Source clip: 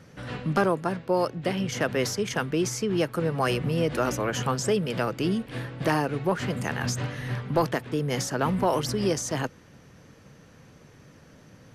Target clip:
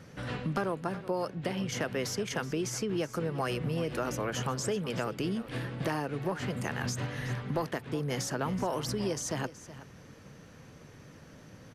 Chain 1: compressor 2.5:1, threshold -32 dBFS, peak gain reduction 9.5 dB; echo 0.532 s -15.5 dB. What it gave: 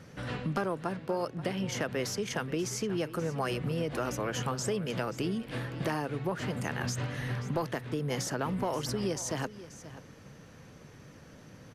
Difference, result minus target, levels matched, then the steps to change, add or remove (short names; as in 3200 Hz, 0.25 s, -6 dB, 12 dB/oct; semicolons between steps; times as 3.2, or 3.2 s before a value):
echo 0.158 s late
change: echo 0.374 s -15.5 dB